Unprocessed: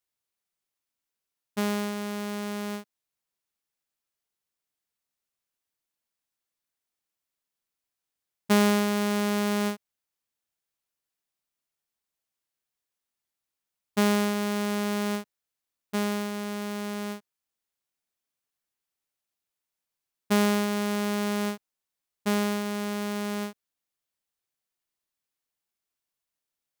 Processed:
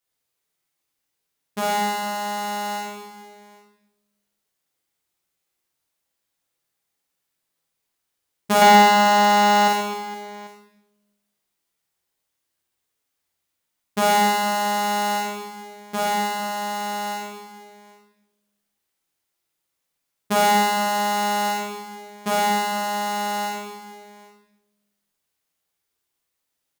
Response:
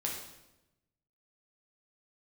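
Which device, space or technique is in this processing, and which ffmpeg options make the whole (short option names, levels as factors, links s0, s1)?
bathroom: -filter_complex "[1:a]atrim=start_sample=2205[s0];[0:a][s0]afir=irnorm=-1:irlink=0,bandreject=f=50:t=h:w=6,bandreject=f=100:t=h:w=6,bandreject=f=150:t=h:w=6,bandreject=f=200:t=h:w=6,asettb=1/sr,asplit=3[s1][s2][s3];[s1]atrim=end=8.614[s4];[s2]atrim=start=8.61:end=9.68,asetpts=PTS-STARTPTS,afade=t=in:d=0.004:c=qsin,afade=t=out:st=1.066:d=0.004:c=qsin,aecho=1:1:4.9:0.74,atrim=end_sample=47187[s5];[s3]atrim=start=9.676[s6];[s4][s5]acrossfade=d=0.004:c1=hsin:c2=qsin[s7];[s7][s6]acrossfade=d=0.004:c1=qsin:c2=hsin,aecho=1:1:50|130|258|462.8|790.5:0.631|0.398|0.251|0.158|0.1,volume=1.5"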